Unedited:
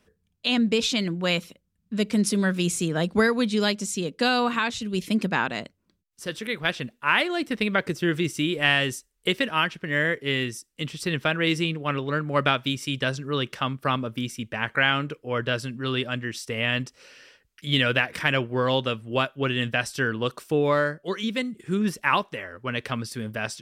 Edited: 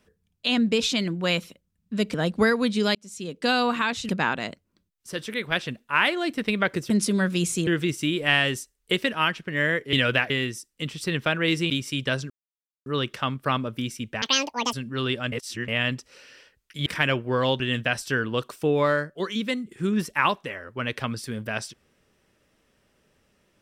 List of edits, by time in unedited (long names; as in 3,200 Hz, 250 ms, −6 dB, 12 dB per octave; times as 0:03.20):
0:02.14–0:02.91: move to 0:08.03
0:03.72–0:04.29: fade in
0:04.86–0:05.22: remove
0:11.69–0:12.65: remove
0:13.25: splice in silence 0.56 s
0:14.61–0:15.61: play speed 196%
0:16.20–0:16.56: reverse
0:17.74–0:18.11: move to 0:10.29
0:18.85–0:19.48: remove